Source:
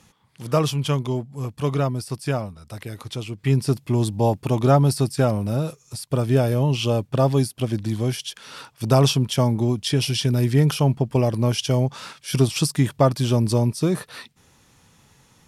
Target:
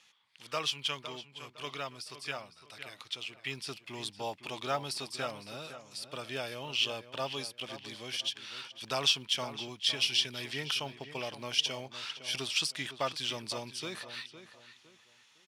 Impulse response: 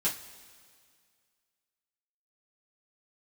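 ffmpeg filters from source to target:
-filter_complex "[0:a]bandpass=f=3100:t=q:w=1.3:csg=0,acrusher=bits=9:mode=log:mix=0:aa=0.000001,asplit=2[s0][s1];[s1]adelay=509,lowpass=f=3100:p=1,volume=0.266,asplit=2[s2][s3];[s3]adelay=509,lowpass=f=3100:p=1,volume=0.33,asplit=2[s4][s5];[s5]adelay=509,lowpass=f=3100:p=1,volume=0.33[s6];[s2][s4][s6]amix=inputs=3:normalize=0[s7];[s0][s7]amix=inputs=2:normalize=0"

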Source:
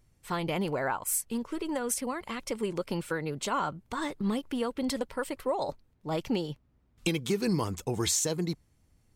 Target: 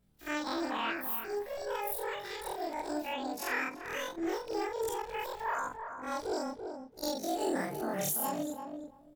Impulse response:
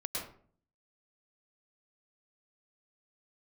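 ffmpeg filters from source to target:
-filter_complex "[0:a]afftfilt=real='re':imag='-im':win_size=4096:overlap=0.75,asetrate=76340,aresample=44100,atempo=0.577676,asplit=2[s0][s1];[s1]adelay=337,lowpass=f=1300:p=1,volume=0.501,asplit=2[s2][s3];[s3]adelay=337,lowpass=f=1300:p=1,volume=0.17,asplit=2[s4][s5];[s5]adelay=337,lowpass=f=1300:p=1,volume=0.17[s6];[s0][s2][s4][s6]amix=inputs=4:normalize=0"

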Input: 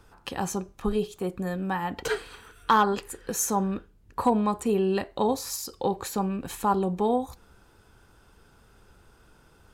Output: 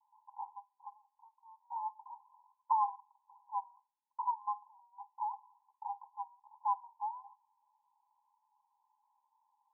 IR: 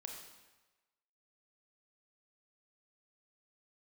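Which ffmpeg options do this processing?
-af "asuperpass=centerf=920:order=20:qfactor=3.6,volume=0.501"

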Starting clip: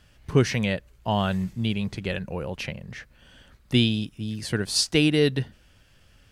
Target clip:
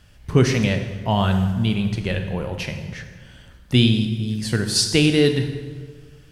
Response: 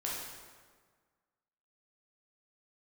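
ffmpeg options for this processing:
-filter_complex "[0:a]asplit=2[s0][s1];[s1]bass=f=250:g=8,treble=f=4000:g=4[s2];[1:a]atrim=start_sample=2205[s3];[s2][s3]afir=irnorm=-1:irlink=0,volume=0.501[s4];[s0][s4]amix=inputs=2:normalize=0"

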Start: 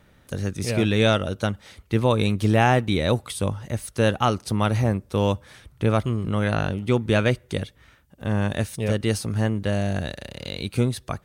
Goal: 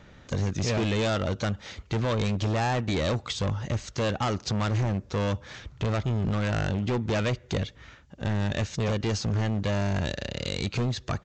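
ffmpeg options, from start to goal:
-af "acompressor=threshold=0.0447:ratio=2,aresample=16000,volume=25.1,asoftclip=hard,volume=0.0398,aresample=44100,volume=1.78"

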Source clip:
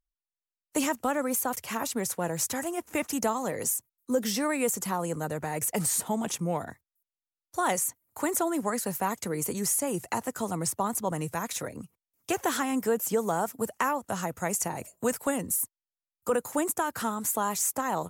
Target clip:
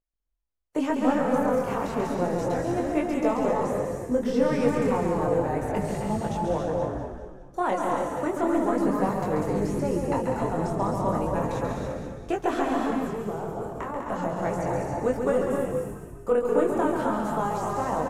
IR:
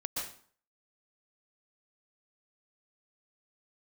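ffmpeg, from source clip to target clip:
-filter_complex "[0:a]aemphasis=mode=reproduction:type=75kf,aeval=exprs='0.158*(cos(1*acos(clip(val(0)/0.158,-1,1)))-cos(1*PI/2))+0.00562*(cos(4*acos(clip(val(0)/0.158,-1,1)))-cos(4*PI/2))':c=same,equalizer=f=470:w=0.53:g=6.5,asettb=1/sr,asplit=3[s0][s1][s2];[s0]atrim=end=12.734[s3];[s1]atrim=start=12.73:end=13.96,asetpts=PTS-STARTPTS,afade=t=in:d=0.004:c=qsin,afade=t=out:st=1.226:d=0.004:c=qsin,acompressor=threshold=0.0282:ratio=3[s4];[s2]atrim=start=13.956[s5];[s3][s4]acrossfade=d=0.004:c1=hsin:c2=qsin[s6];[s6][s5]acrossfade=d=0.004:c1=qsin:c2=hsin,flanger=delay=19.5:depth=5.8:speed=0.33,acrossover=split=5200[s7][s8];[s8]acompressor=threshold=0.00316:ratio=4:attack=1:release=60[s9];[s7][s9]amix=inputs=2:normalize=0,asplit=7[s10][s11][s12][s13][s14][s15][s16];[s11]adelay=199,afreqshift=-51,volume=0.501[s17];[s12]adelay=398,afreqshift=-102,volume=0.232[s18];[s13]adelay=597,afreqshift=-153,volume=0.106[s19];[s14]adelay=796,afreqshift=-204,volume=0.049[s20];[s15]adelay=995,afreqshift=-255,volume=0.0224[s21];[s16]adelay=1194,afreqshift=-306,volume=0.0104[s22];[s10][s17][s18][s19][s20][s21][s22]amix=inputs=7:normalize=0,asplit=2[s23][s24];[1:a]atrim=start_sample=2205,lowshelf=f=120:g=11,adelay=137[s25];[s24][s25]afir=irnorm=-1:irlink=0,volume=0.631[s26];[s23][s26]amix=inputs=2:normalize=0"

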